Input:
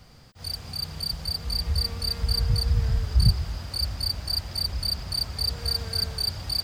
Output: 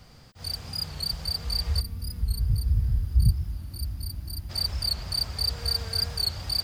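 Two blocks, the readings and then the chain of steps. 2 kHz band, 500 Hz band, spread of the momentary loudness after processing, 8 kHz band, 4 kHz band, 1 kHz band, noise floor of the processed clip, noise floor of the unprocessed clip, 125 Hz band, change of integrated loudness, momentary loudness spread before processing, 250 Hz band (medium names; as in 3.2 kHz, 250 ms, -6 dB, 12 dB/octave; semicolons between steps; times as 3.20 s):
-2.5 dB, -4.0 dB, 10 LU, -1.0 dB, -2.0 dB, -3.0 dB, -49 dBFS, -49 dBFS, -1.0 dB, -1.5 dB, 7 LU, -2.5 dB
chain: time-frequency box 1.81–4.50 s, 350–9200 Hz -15 dB; dynamic bell 230 Hz, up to -4 dB, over -40 dBFS, Q 0.77; warped record 45 rpm, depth 100 cents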